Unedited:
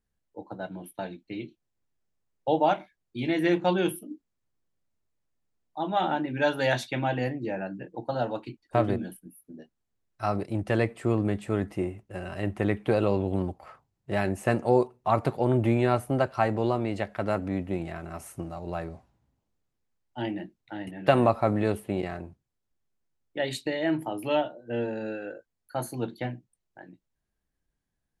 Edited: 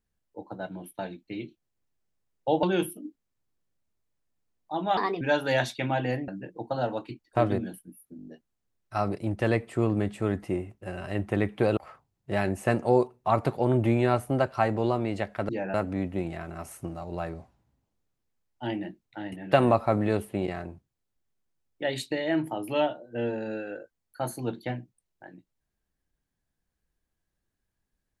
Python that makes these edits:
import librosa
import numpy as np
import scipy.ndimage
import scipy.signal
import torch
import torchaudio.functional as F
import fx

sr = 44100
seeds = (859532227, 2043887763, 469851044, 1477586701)

y = fx.edit(x, sr, fx.cut(start_s=2.63, length_s=1.06),
    fx.speed_span(start_s=6.03, length_s=0.31, speed=1.29),
    fx.move(start_s=7.41, length_s=0.25, to_s=17.29),
    fx.stutter(start_s=9.55, slice_s=0.02, count=6),
    fx.cut(start_s=13.05, length_s=0.52), tone=tone)